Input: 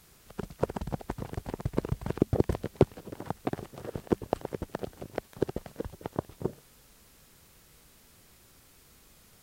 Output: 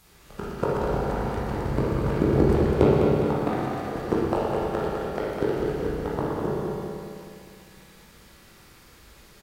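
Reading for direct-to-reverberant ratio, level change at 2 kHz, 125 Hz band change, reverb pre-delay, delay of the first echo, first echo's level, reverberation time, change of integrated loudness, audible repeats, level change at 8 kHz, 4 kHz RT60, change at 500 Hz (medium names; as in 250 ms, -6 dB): -9.0 dB, +11.0 dB, +8.0 dB, 18 ms, 204 ms, -5.5 dB, 2.4 s, +9.0 dB, 1, no reading, 2.3 s, +9.5 dB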